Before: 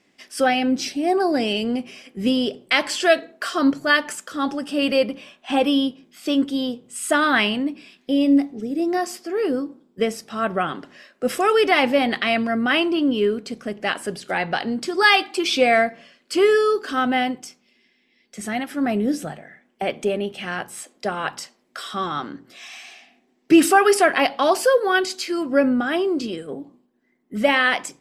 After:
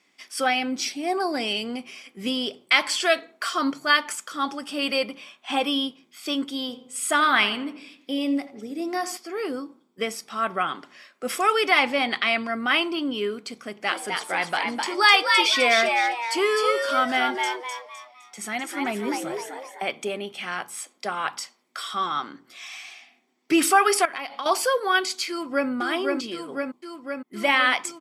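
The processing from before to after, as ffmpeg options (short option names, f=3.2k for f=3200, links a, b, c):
-filter_complex "[0:a]asettb=1/sr,asplit=3[a][b][c];[a]atrim=end=6.604[d];[b]atrim=start=6.6:end=9.17,asetpts=PTS-STARTPTS,afade=t=in:d=0.004:c=qsin,afade=t=out:st=2.566:d=0.004:c=qsin,asplit=2[e][f];[f]adelay=84,lowpass=f=2k:p=1,volume=-12dB,asplit=2[g][h];[h]adelay=84,lowpass=f=2k:p=1,volume=0.52,asplit=2[i][j];[j]adelay=84,lowpass=f=2k:p=1,volume=0.52,asplit=2[k][l];[l]adelay=84,lowpass=f=2k:p=1,volume=0.52,asplit=2[m][n];[n]adelay=84,lowpass=f=2k:p=1,volume=0.52[o];[e][g][i][k][m][o]amix=inputs=6:normalize=0,atrim=end_sample=113337[p];[c]atrim=start=9.166[q];[d][p]acrossfade=d=0.004:c1=hsin:c2=qsin[r];[r][q]acrossfade=d=0.004:c1=qsin:c2=hsin,asettb=1/sr,asplit=3[s][t][u];[s]atrim=end=11.794[v];[t]atrim=start=11.79:end=12.53,asetpts=PTS-STARTPTS,afade=t=in:d=0.004:c=qsin,afade=t=out:st=0.736:d=0.004:c=qsin,lowpass=10k[w];[u]atrim=start=12.526[x];[v][w]acrossfade=d=0.004:c1=hsin:c2=qsin[y];[y][x]acrossfade=d=0.004:c1=qsin:c2=hsin,asplit=3[z][aa][ab];[z]afade=t=out:st=13.87:d=0.02[ac];[aa]asplit=6[ad][ae][af][ag][ah][ai];[ae]adelay=256,afreqshift=120,volume=-4dB[aj];[af]adelay=512,afreqshift=240,volume=-12.9dB[ak];[ag]adelay=768,afreqshift=360,volume=-21.7dB[al];[ah]adelay=1024,afreqshift=480,volume=-30.6dB[am];[ai]adelay=1280,afreqshift=600,volume=-39.5dB[an];[ad][aj][ak][al][am][an]amix=inputs=6:normalize=0,afade=t=in:st=13.87:d=0.02,afade=t=out:st=19.87:d=0.02[ao];[ab]afade=t=in:st=19.87:d=0.02[ap];[ac][ao][ap]amix=inputs=3:normalize=0,asettb=1/sr,asplit=3[aq][ar][as];[aq]atrim=end=24.054[at];[ar]atrim=start=24.05:end=24.46,asetpts=PTS-STARTPTS,afade=t=in:d=0.004:c=qsin,afade=t=out:st=0.406:d=0.004:c=qsin,acompressor=threshold=-26dB:ratio=10:attack=3.2:release=140:knee=1:detection=peak[au];[as]atrim=start=24.456[av];[at][au]acrossfade=d=0.004:c1=hsin:c2=qsin[aw];[aw][av]acrossfade=d=0.004:c1=qsin:c2=hsin,asplit=2[ax][ay];[ay]afade=t=in:st=25.29:d=0.01,afade=t=out:st=25.69:d=0.01,aecho=0:1:510|1020|1530|2040|2550|3060|3570|4080|4590|5100|5610|6120:0.707946|0.530959|0.39822|0.298665|0.223998|0.167999|0.125999|0.0944994|0.0708745|0.0531559|0.0398669|0.0299002[az];[ax][az]amix=inputs=2:normalize=0,highpass=f=690:p=1,aecho=1:1:0.9:0.33"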